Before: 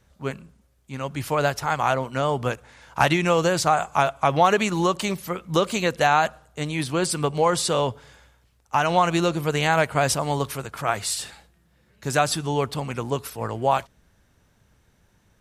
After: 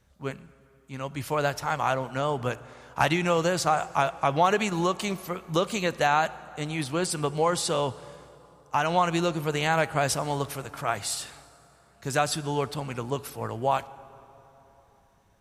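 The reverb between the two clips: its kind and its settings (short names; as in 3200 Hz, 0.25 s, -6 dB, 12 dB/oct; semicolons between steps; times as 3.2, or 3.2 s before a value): plate-style reverb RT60 3.6 s, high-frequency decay 0.6×, DRR 17.5 dB; gain -4 dB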